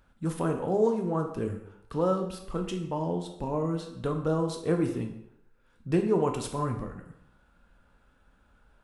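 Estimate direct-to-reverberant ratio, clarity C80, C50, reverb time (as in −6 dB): 3.5 dB, 10.0 dB, 8.0 dB, 0.75 s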